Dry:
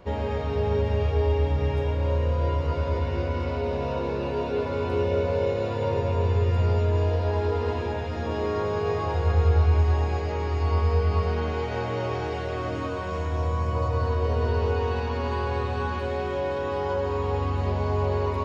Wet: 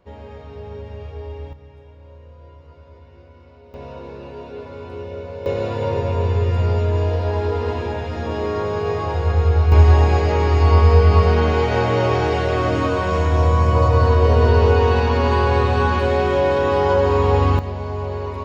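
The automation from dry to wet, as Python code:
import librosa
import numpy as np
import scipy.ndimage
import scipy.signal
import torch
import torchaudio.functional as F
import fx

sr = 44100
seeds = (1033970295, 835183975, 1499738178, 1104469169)

y = fx.gain(x, sr, db=fx.steps((0.0, -9.5), (1.53, -19.0), (3.74, -7.0), (5.46, 4.0), (9.72, 10.5), (17.59, -1.0)))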